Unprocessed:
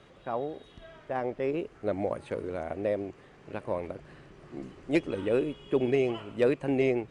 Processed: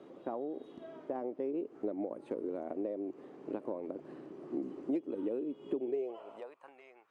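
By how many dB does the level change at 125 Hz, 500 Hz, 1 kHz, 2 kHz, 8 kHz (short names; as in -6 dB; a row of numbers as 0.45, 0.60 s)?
-19.0 dB, -9.0 dB, -9.5 dB, -20.5 dB, n/a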